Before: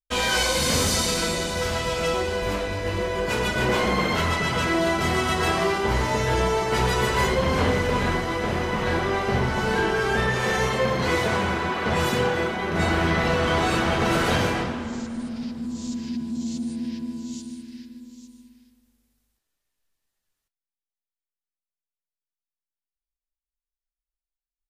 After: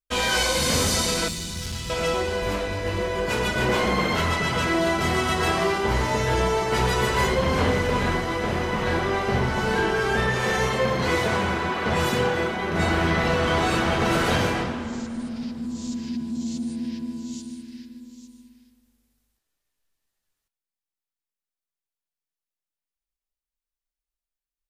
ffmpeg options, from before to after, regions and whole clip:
-filter_complex "[0:a]asettb=1/sr,asplit=3[s0][s1][s2];[s0]atrim=end=1.284[s3];[s1]atrim=start=1.28:end=1.9,asetpts=PTS-STARTPTS,afade=t=in:d=0.004:c=qsin,afade=t=out:st=0.616:d=0.004:c=qsin,equalizer=f=570:t=o:w=0.47:g=-10,acrossover=split=250|3000[s4][s5][s6];[s5]acompressor=threshold=0.00562:ratio=3:attack=3.2:release=140:knee=2.83:detection=peak[s7];[s4][s7][s6]amix=inputs=3:normalize=0,aeval=exprs='clip(val(0),-1,0.0398)':c=same[s8];[s2]atrim=start=1.896[s9];[s3][s8]acrossfade=d=0.004:c1=hsin:c2=qsin[s10];[s10][s9]acrossfade=d=0.004:c1=qsin:c2=hsin"

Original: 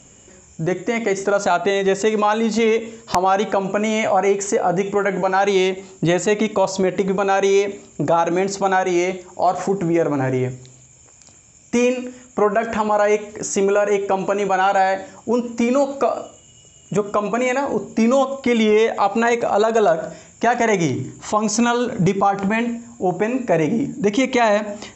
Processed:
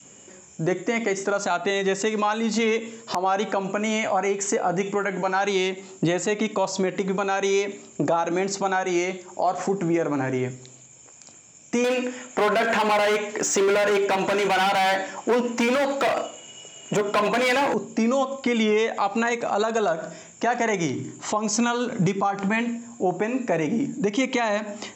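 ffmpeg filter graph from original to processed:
-filter_complex "[0:a]asettb=1/sr,asplit=3[s0][s1][s2];[s0]atrim=end=11.844[s3];[s1]atrim=start=11.84:end=17.74,asetpts=PTS-STARTPTS,afade=t=in:d=0.004:c=qsin,afade=t=out:st=5.896:d=0.004:c=qsin,asplit=2[s4][s5];[s5]highpass=f=720:p=1,volume=7.94,asoftclip=type=tanh:threshold=0.473[s6];[s4][s6]amix=inputs=2:normalize=0,lowpass=f=2500:p=1,volume=0.501,asoftclip=type=hard:threshold=0.188,bandreject=f=1200:w=11[s7];[s2]atrim=start=17.736[s8];[s3][s7]acrossfade=d=0.004:c1=hsin:c2=qsin[s9];[s9][s8]acrossfade=d=0.004:c1=qsin:c2=hsin,adynamicequalizer=threshold=0.0316:dfrequency=530:dqfactor=0.9:tfrequency=530:tqfactor=0.9:attack=5:release=100:ratio=0.375:range=3:mode=cutabove:tftype=bell,highpass=170,alimiter=limit=0.224:level=0:latency=1:release=289"

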